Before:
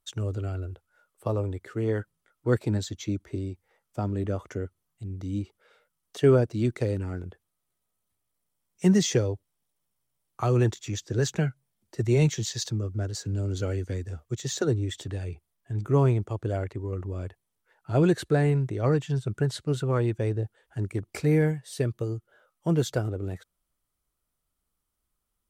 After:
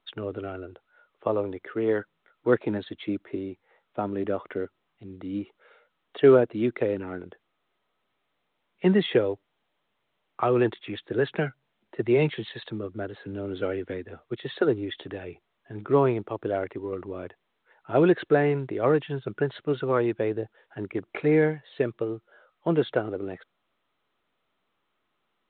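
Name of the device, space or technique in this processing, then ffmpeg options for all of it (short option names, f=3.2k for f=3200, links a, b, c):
telephone: -af "highpass=280,lowpass=3.2k,volume=5dB" -ar 8000 -c:a pcm_mulaw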